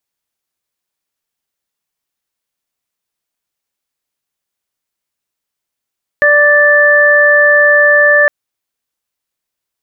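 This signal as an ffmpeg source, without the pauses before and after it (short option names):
-f lavfi -i "aevalsrc='0.316*sin(2*PI*587*t)+0.1*sin(2*PI*1174*t)+0.473*sin(2*PI*1761*t)':d=2.06:s=44100"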